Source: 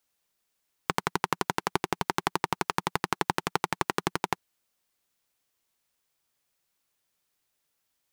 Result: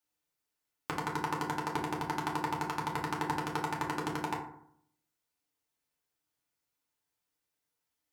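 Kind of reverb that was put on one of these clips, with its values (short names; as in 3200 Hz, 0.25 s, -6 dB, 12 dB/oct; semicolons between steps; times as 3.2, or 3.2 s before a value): FDN reverb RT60 0.66 s, low-frequency decay 1.25×, high-frequency decay 0.45×, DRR -3 dB; gain -11 dB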